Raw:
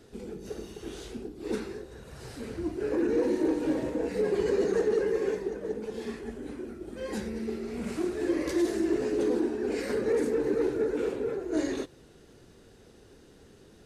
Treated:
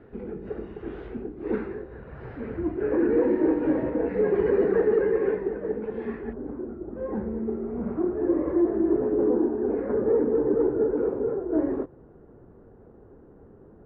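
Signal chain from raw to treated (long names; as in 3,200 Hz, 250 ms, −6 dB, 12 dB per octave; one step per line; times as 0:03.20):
low-pass filter 2,000 Hz 24 dB per octave, from 0:06.33 1,200 Hz
level +4.5 dB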